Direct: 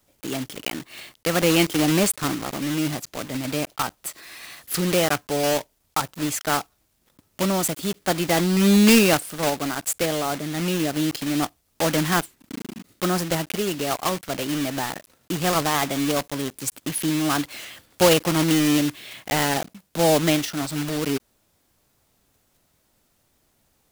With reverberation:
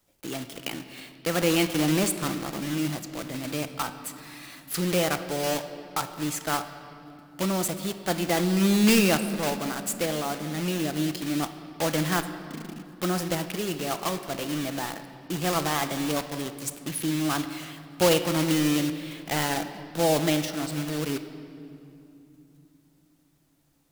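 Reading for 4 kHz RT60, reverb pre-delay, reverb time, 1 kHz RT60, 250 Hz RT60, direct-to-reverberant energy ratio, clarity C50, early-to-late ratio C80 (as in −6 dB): 2.0 s, 6 ms, 2.8 s, 2.6 s, 4.6 s, 8.5 dB, 10.5 dB, 11.0 dB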